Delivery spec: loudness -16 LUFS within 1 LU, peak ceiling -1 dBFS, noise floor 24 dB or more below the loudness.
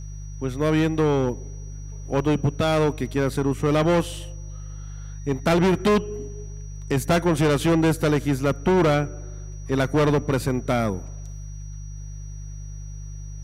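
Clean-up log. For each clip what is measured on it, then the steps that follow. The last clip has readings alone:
hum 50 Hz; harmonics up to 150 Hz; hum level -32 dBFS; steady tone 5800 Hz; tone level -49 dBFS; loudness -22.5 LUFS; peak -11.5 dBFS; loudness target -16.0 LUFS
-> de-hum 50 Hz, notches 3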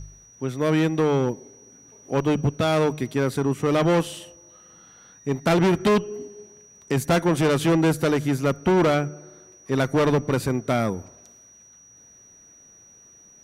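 hum none; steady tone 5800 Hz; tone level -49 dBFS
-> notch 5800 Hz, Q 30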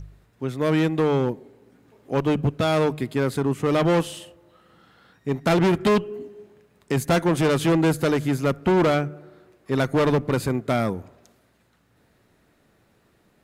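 steady tone none; loudness -22.5 LUFS; peak -11.5 dBFS; loudness target -16.0 LUFS
-> gain +6.5 dB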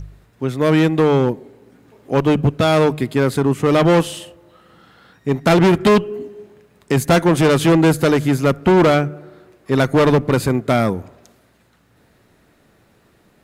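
loudness -16.0 LUFS; peak -5.0 dBFS; noise floor -56 dBFS

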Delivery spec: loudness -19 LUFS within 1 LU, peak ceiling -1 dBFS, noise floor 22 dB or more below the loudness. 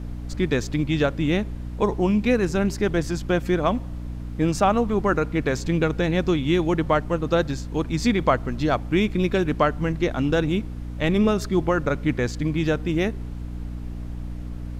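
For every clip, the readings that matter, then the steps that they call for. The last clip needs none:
hum 60 Hz; harmonics up to 300 Hz; hum level -30 dBFS; noise floor -33 dBFS; noise floor target -45 dBFS; loudness -23.0 LUFS; peak -6.5 dBFS; loudness target -19.0 LUFS
-> de-hum 60 Hz, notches 5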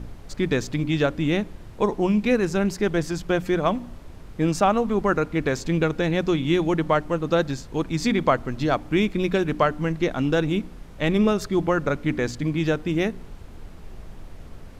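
hum none; noise floor -42 dBFS; noise floor target -46 dBFS
-> noise print and reduce 6 dB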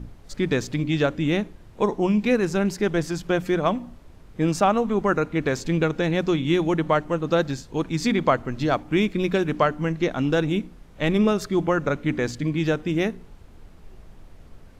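noise floor -48 dBFS; loudness -23.5 LUFS; peak -6.0 dBFS; loudness target -19.0 LUFS
-> gain +4.5 dB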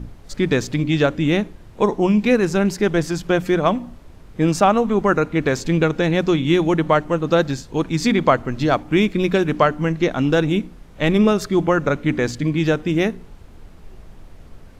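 loudness -19.0 LUFS; peak -1.5 dBFS; noise floor -43 dBFS

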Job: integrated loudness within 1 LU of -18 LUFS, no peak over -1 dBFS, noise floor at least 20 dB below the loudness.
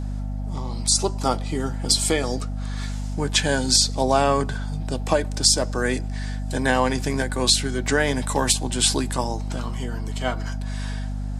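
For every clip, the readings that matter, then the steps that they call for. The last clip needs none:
hum 50 Hz; harmonics up to 250 Hz; hum level -25 dBFS; loudness -22.5 LUFS; peak -3.0 dBFS; loudness target -18.0 LUFS
-> de-hum 50 Hz, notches 5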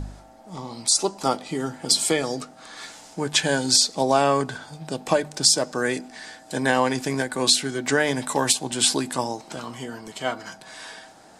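hum none; loudness -22.0 LUFS; peak -3.0 dBFS; loudness target -18.0 LUFS
-> gain +4 dB; limiter -1 dBFS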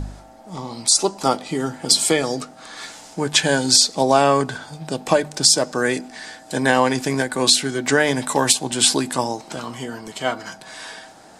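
loudness -18.5 LUFS; peak -1.0 dBFS; noise floor -45 dBFS

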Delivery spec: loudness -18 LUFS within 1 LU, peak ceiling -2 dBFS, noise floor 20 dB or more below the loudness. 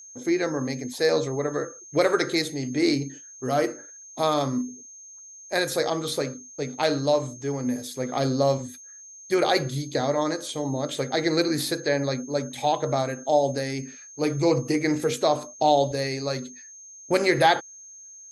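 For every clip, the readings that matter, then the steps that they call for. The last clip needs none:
steady tone 6400 Hz; tone level -43 dBFS; loudness -25.5 LUFS; peak -7.0 dBFS; loudness target -18.0 LUFS
-> notch 6400 Hz, Q 30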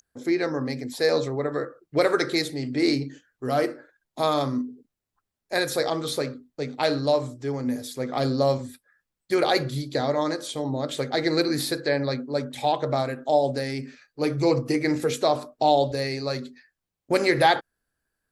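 steady tone none; loudness -25.5 LUFS; peak -7.0 dBFS; loudness target -18.0 LUFS
-> gain +7.5 dB; limiter -2 dBFS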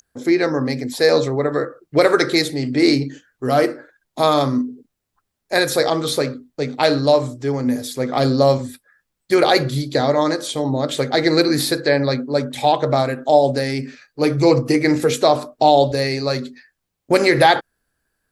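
loudness -18.0 LUFS; peak -2.0 dBFS; noise floor -77 dBFS

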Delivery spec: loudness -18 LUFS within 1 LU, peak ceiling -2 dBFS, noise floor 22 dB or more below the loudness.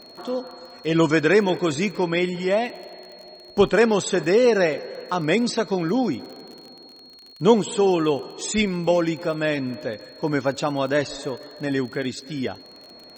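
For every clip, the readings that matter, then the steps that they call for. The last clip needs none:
ticks 38/s; steady tone 4300 Hz; tone level -45 dBFS; loudness -22.5 LUFS; peak -3.5 dBFS; loudness target -18.0 LUFS
-> de-click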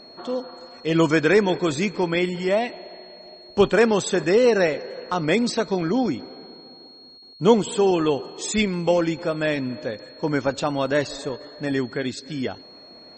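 ticks 0/s; steady tone 4300 Hz; tone level -45 dBFS
-> notch 4300 Hz, Q 30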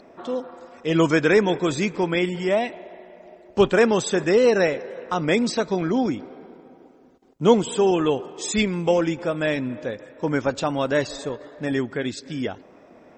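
steady tone none; loudness -22.5 LUFS; peak -3.5 dBFS; loudness target -18.0 LUFS
-> gain +4.5 dB; limiter -2 dBFS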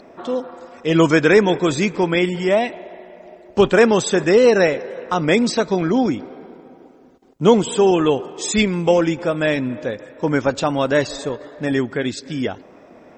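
loudness -18.0 LUFS; peak -2.0 dBFS; noise floor -46 dBFS

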